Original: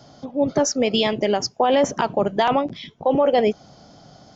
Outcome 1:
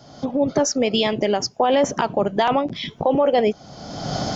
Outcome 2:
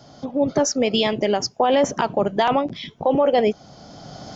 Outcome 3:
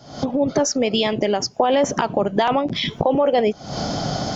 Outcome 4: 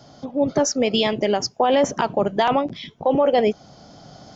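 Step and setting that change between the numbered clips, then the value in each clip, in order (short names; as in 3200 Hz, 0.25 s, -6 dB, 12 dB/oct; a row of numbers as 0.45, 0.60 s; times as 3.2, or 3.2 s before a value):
recorder AGC, rising by: 35, 14, 86, 5.6 dB/s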